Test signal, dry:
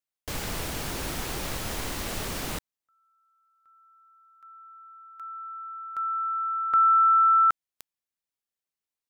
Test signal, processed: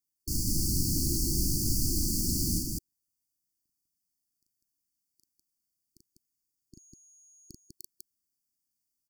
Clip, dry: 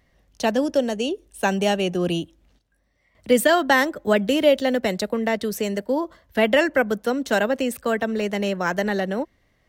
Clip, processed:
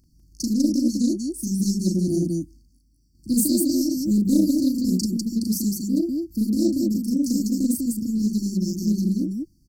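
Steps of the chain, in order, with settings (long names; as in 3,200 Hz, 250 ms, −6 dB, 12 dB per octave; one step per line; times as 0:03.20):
high-shelf EQ 11,000 Hz +3.5 dB
in parallel at −7.5 dB: soft clipping −19 dBFS
on the sum: linear-phase brick-wall band-stop 360–4,400 Hz
on a send: loudspeakers that aren't time-aligned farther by 13 metres −2 dB, 68 metres −2 dB
on the sum: highs frequency-modulated by the lows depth 0.12 ms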